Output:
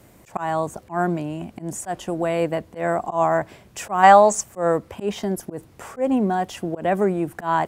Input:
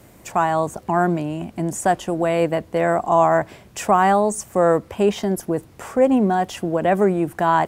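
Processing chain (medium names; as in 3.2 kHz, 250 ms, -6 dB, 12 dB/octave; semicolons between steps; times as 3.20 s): slow attack 114 ms; time-frequency box 4.03–4.41 s, 450–7900 Hz +10 dB; trim -3 dB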